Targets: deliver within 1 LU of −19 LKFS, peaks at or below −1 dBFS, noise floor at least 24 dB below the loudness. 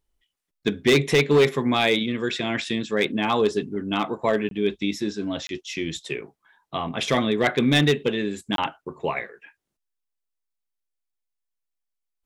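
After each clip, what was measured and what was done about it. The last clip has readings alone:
share of clipped samples 0.6%; peaks flattened at −12.0 dBFS; number of dropouts 3; longest dropout 22 ms; integrated loudness −23.5 LKFS; sample peak −12.0 dBFS; target loudness −19.0 LKFS
→ clipped peaks rebuilt −12 dBFS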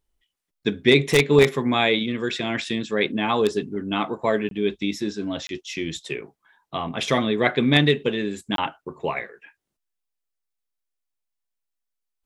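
share of clipped samples 0.0%; number of dropouts 3; longest dropout 22 ms
→ repair the gap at 0:04.49/0:05.47/0:08.56, 22 ms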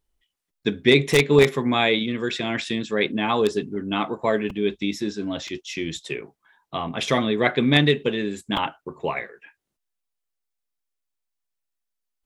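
number of dropouts 0; integrated loudness −22.5 LKFS; sample peak −3.0 dBFS; target loudness −19.0 LKFS
→ level +3.5 dB
brickwall limiter −1 dBFS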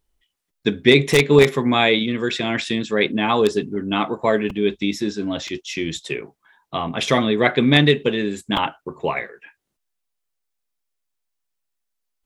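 integrated loudness −19.5 LKFS; sample peak −1.0 dBFS; background noise floor −77 dBFS

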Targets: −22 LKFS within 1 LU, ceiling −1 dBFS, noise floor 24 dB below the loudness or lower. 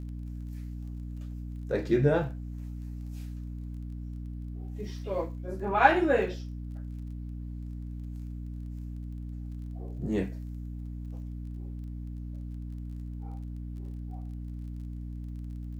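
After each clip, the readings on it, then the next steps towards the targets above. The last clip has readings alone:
crackle rate 22 per second; mains hum 60 Hz; hum harmonics up to 300 Hz; level of the hum −35 dBFS; integrated loudness −34.0 LKFS; sample peak −5.0 dBFS; target loudness −22.0 LKFS
→ click removal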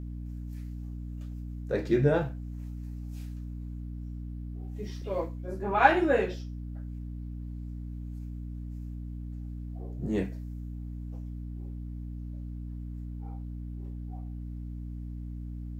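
crackle rate 0 per second; mains hum 60 Hz; hum harmonics up to 300 Hz; level of the hum −35 dBFS
→ mains-hum notches 60/120/180/240/300 Hz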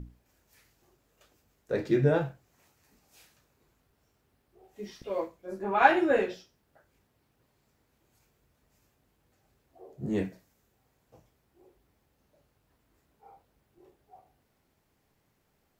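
mains hum none found; integrated loudness −28.5 LKFS; sample peak −5.0 dBFS; target loudness −22.0 LKFS
→ level +6.5 dB
brickwall limiter −1 dBFS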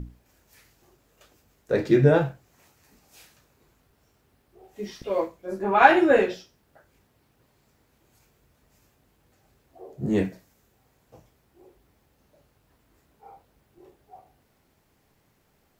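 integrated loudness −22.0 LKFS; sample peak −1.0 dBFS; background noise floor −67 dBFS

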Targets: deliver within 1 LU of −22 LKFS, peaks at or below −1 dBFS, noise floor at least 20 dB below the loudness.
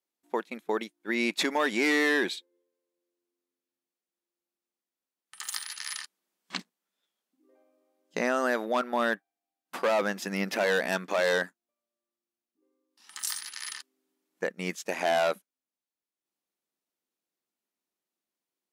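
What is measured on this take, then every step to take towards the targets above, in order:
integrated loudness −29.5 LKFS; sample peak −12.5 dBFS; target loudness −22.0 LKFS
→ level +7.5 dB

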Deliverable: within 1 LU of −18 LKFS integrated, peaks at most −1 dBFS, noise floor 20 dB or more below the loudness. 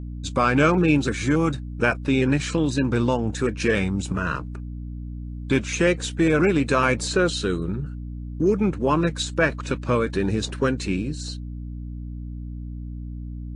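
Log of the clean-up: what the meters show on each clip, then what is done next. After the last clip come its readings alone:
mains hum 60 Hz; hum harmonics up to 300 Hz; level of the hum −30 dBFS; integrated loudness −22.5 LKFS; sample peak −6.0 dBFS; target loudness −18.0 LKFS
→ hum removal 60 Hz, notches 5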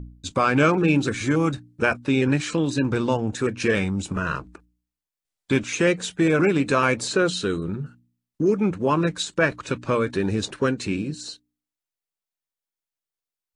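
mains hum none found; integrated loudness −23.0 LKFS; sample peak −6.5 dBFS; target loudness −18.0 LKFS
→ level +5 dB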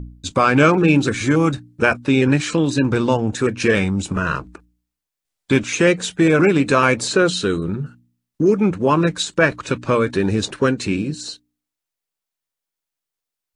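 integrated loudness −18.0 LKFS; sample peak −1.5 dBFS; background noise floor −85 dBFS

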